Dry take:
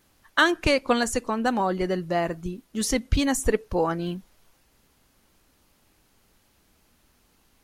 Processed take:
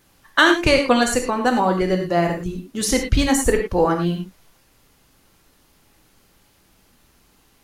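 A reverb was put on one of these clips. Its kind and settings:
reverb whose tail is shaped and stops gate 130 ms flat, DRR 3.5 dB
level +4.5 dB

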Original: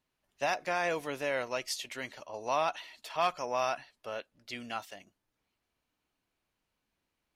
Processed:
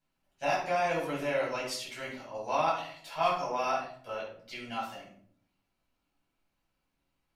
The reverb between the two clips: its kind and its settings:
rectangular room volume 740 cubic metres, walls furnished, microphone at 7.8 metres
level −9 dB

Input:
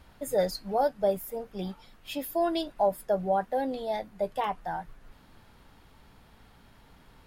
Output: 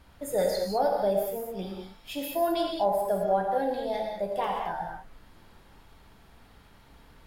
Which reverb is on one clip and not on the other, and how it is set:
reverb whose tail is shaped and stops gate 240 ms flat, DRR 0 dB
level −1.5 dB

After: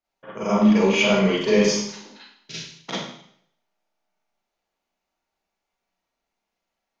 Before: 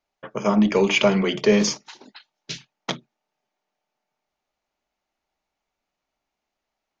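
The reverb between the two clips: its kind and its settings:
four-comb reverb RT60 0.66 s, combs from 33 ms, DRR −9 dB
level −9 dB

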